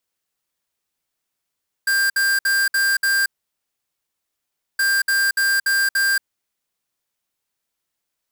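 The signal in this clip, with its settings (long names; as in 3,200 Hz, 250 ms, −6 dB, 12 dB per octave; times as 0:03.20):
beeps in groups square 1,590 Hz, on 0.23 s, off 0.06 s, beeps 5, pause 1.53 s, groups 2, −18 dBFS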